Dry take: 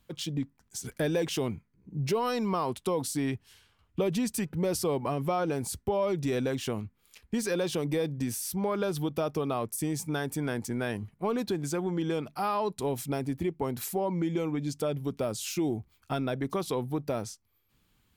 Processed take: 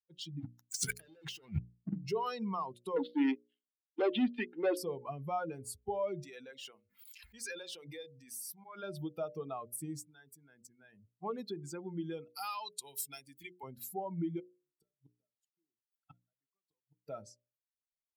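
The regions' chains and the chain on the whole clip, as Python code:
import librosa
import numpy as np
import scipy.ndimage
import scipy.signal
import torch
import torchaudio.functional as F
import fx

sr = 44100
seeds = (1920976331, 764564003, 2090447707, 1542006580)

y = fx.chain(x, sr, fx.low_shelf(hz=290.0, db=-8.0),
    fx.leveller(passes=5),
    fx.over_compress(threshold_db=-30.0, ratio=-0.5), at=(0.4, 2.06))
y = fx.chain(y, sr, fx.cheby1_bandpass(low_hz=250.0, high_hz=3500.0, order=4),
    fx.leveller(passes=3), at=(2.96, 4.77))
y = fx.chain(y, sr, fx.highpass(hz=740.0, slope=6),
    fx.auto_swell(attack_ms=158.0),
    fx.pre_swell(db_per_s=28.0), at=(6.23, 8.83))
y = fx.chain(y, sr, fx.level_steps(step_db=20),
    fx.highpass(hz=100.0, slope=12), at=(10.05, 11.19))
y = fx.chain(y, sr, fx.tilt_shelf(db=-9.5, hz=1500.0),
    fx.band_squash(depth_pct=40), at=(12.29, 13.63))
y = fx.chain(y, sr, fx.gate_flip(shuts_db=-26.0, range_db=-30),
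    fx.leveller(passes=1), at=(14.39, 17.07))
y = fx.bin_expand(y, sr, power=2.0)
y = scipy.signal.sosfilt(scipy.signal.butter(2, 59.0, 'highpass', fs=sr, output='sos'), y)
y = fx.hum_notches(y, sr, base_hz=60, count=10)
y = F.gain(torch.from_numpy(y), -2.5).numpy()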